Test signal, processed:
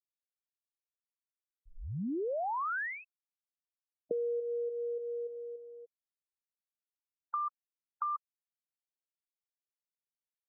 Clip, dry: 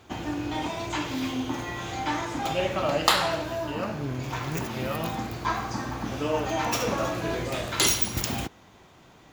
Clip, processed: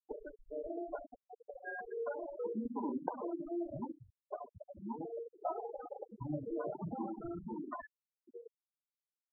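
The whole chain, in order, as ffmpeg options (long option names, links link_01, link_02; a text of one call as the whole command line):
ffmpeg -i in.wav -af "acompressor=threshold=-40dB:ratio=5,highpass=frequency=460:width_type=q:width=0.5412,highpass=frequency=460:width_type=q:width=1.307,lowpass=frequency=2200:width_type=q:width=0.5176,lowpass=frequency=2200:width_type=q:width=0.7071,lowpass=frequency=2200:width_type=q:width=1.932,afreqshift=-320,afftfilt=real='re*gte(hypot(re,im),0.0224)':imag='im*gte(hypot(re,im),0.0224)':win_size=1024:overlap=0.75,volume=5.5dB" out.wav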